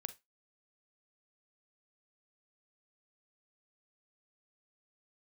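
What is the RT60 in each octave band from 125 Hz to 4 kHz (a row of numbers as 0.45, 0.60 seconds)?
0.15, 0.20, 0.20, 0.20, 0.20, 0.20 seconds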